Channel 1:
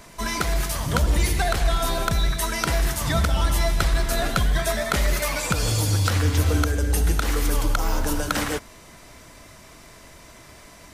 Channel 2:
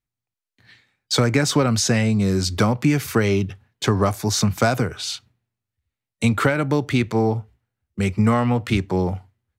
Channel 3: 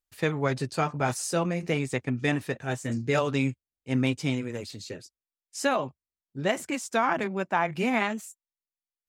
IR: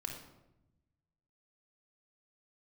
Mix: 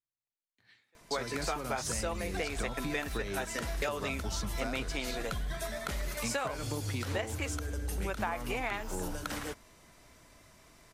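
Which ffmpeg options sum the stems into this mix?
-filter_complex "[0:a]adelay=950,volume=-12.5dB[a];[1:a]lowshelf=f=170:g=-10,volume=-12.5dB,asplit=2[b][c];[2:a]highpass=480,adelay=700,volume=3dB[d];[c]apad=whole_len=431704[e];[d][e]sidechaingate=range=-45dB:threshold=-59dB:ratio=16:detection=peak[f];[a][b][f]amix=inputs=3:normalize=0,acompressor=threshold=-31dB:ratio=6"

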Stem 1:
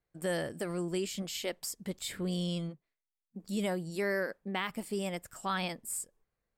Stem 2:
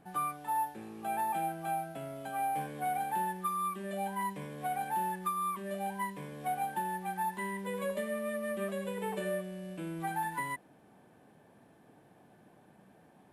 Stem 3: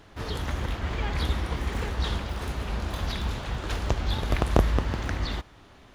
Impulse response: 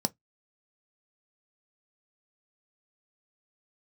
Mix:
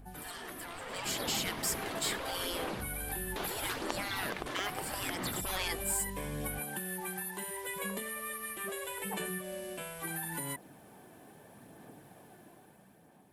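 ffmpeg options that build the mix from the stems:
-filter_complex "[0:a]aeval=exprs='val(0)+0.00282*(sin(2*PI*50*n/s)+sin(2*PI*2*50*n/s)/2+sin(2*PI*3*50*n/s)/3+sin(2*PI*4*50*n/s)/4+sin(2*PI*5*50*n/s)/5)':c=same,asoftclip=type=tanh:threshold=-31dB,volume=-2.5dB,asplit=2[a][b];[1:a]aemphasis=mode=production:type=50fm,volume=-3.5dB[c];[2:a]volume=-3.5dB[d];[b]apad=whole_len=261971[e];[d][e]sidechaingate=range=-33dB:threshold=-51dB:ratio=16:detection=peak[f];[c][f]amix=inputs=2:normalize=0,highshelf=f=10k:g=-5.5,acompressor=threshold=-39dB:ratio=6,volume=0dB[g];[a][g]amix=inputs=2:normalize=0,afftfilt=real='re*lt(hypot(re,im),0.0355)':imag='im*lt(hypot(re,im),0.0355)':win_size=1024:overlap=0.75,dynaudnorm=f=140:g=13:m=9dB,aphaser=in_gain=1:out_gain=1:delay=3:decay=0.28:speed=0.76:type=sinusoidal"

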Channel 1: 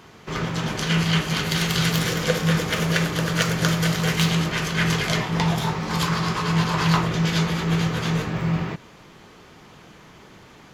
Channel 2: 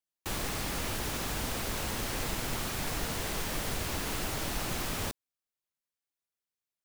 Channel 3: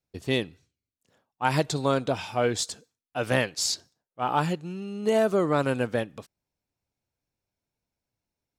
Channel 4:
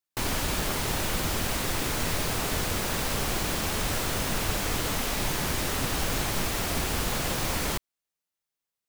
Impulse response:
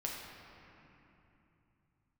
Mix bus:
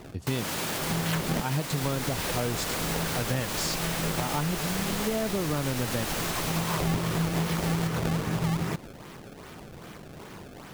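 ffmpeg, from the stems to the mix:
-filter_complex "[0:a]acrusher=samples=26:mix=1:aa=0.000001:lfo=1:lforange=41.6:lforate=2.5,volume=3dB[a];[1:a]adelay=1550,volume=-1dB[b];[2:a]bass=f=250:g=11,treble=f=4k:g=0,volume=-4dB,asplit=2[c][d];[3:a]highpass=240,alimiter=limit=-23dB:level=0:latency=1,adelay=100,volume=1.5dB[e];[d]apad=whole_len=473412[f];[a][f]sidechaincompress=threshold=-42dB:ratio=8:attack=6.6:release=705[g];[g][b][c][e]amix=inputs=4:normalize=0,acompressor=threshold=-25dB:ratio=5"

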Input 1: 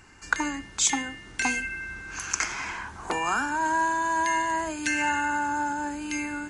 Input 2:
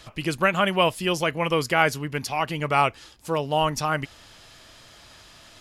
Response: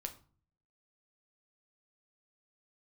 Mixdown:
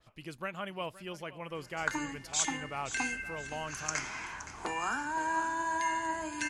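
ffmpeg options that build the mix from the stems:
-filter_complex "[0:a]flanger=delay=6.9:depth=3.3:regen=75:speed=1.4:shape=triangular,adelay=1550,volume=-3dB,asplit=2[a][b];[b]volume=-13.5dB[c];[1:a]adynamicequalizer=threshold=0.02:dfrequency=2600:dqfactor=0.7:tfrequency=2600:tqfactor=0.7:attack=5:release=100:ratio=0.375:range=2.5:mode=cutabove:tftype=highshelf,volume=-17.5dB,asplit=2[d][e];[e]volume=-17.5dB[f];[c][f]amix=inputs=2:normalize=0,aecho=0:1:519|1038|1557|2076|2595:1|0.33|0.109|0.0359|0.0119[g];[a][d][g]amix=inputs=3:normalize=0"

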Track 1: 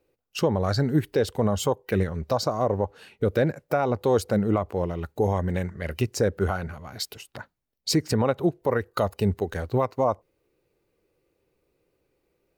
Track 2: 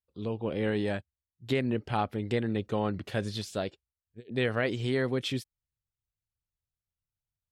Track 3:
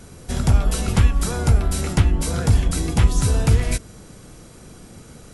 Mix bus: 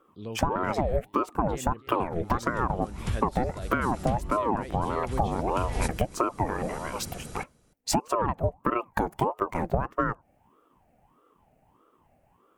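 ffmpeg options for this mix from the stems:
-filter_complex "[0:a]equalizer=f=250:t=o:w=1:g=12,equalizer=f=500:t=o:w=1:g=6,equalizer=f=2k:t=o:w=1:g=7,equalizer=f=4k:t=o:w=1:g=-10,equalizer=f=8k:t=o:w=1:g=4,aeval=exprs='val(0)*sin(2*PI*540*n/s+540*0.55/1.6*sin(2*PI*1.6*n/s))':c=same,volume=3dB[a];[1:a]volume=-4dB,asplit=3[b][c][d];[c]volume=-20.5dB[e];[2:a]adelay=2100,volume=1dB,asplit=2[f][g];[g]volume=-22.5dB[h];[d]apad=whole_len=327867[i];[f][i]sidechaincompress=threshold=-48dB:ratio=16:attack=5.2:release=451[j];[e][h]amix=inputs=2:normalize=0,aecho=0:1:296:1[k];[a][b][j][k]amix=inputs=4:normalize=0,acompressor=threshold=-22dB:ratio=10"

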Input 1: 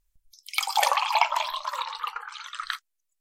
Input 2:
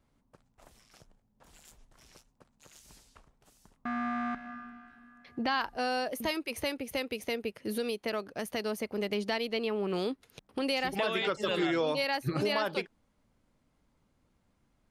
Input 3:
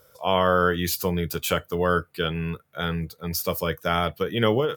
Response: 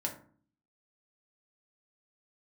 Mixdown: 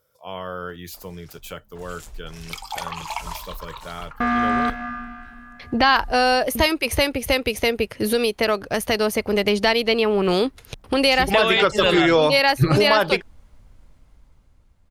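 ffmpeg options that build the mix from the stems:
-filter_complex "[0:a]adelay=1950,volume=-8dB[a];[1:a]dynaudnorm=f=250:g=11:m=12dB,asubboost=boost=5.5:cutoff=86,adelay=350,volume=2.5dB[b];[2:a]volume=-11.5dB[c];[a][b][c]amix=inputs=3:normalize=0"

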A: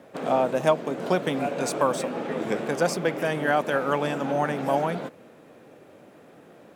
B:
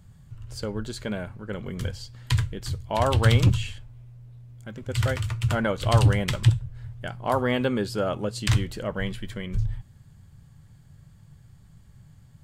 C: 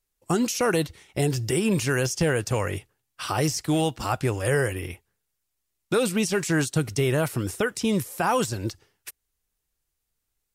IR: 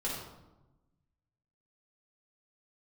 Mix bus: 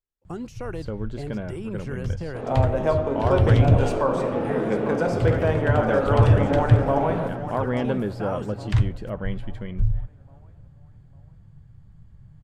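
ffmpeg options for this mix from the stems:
-filter_complex "[0:a]dynaudnorm=f=170:g=7:m=7dB,adelay=2200,volume=-4dB,asplit=3[a][b][c];[b]volume=-8.5dB[d];[c]volume=-12.5dB[e];[1:a]lowshelf=f=89:g=8,adelay=250,volume=-1dB[f];[2:a]volume=-10dB[g];[a][g]amix=inputs=2:normalize=0,alimiter=limit=-14dB:level=0:latency=1:release=329,volume=0dB[h];[3:a]atrim=start_sample=2205[i];[d][i]afir=irnorm=-1:irlink=0[j];[e]aecho=0:1:849|1698|2547|3396|4245:1|0.39|0.152|0.0593|0.0231[k];[f][h][j][k]amix=inputs=4:normalize=0,lowpass=f=1.3k:p=1"

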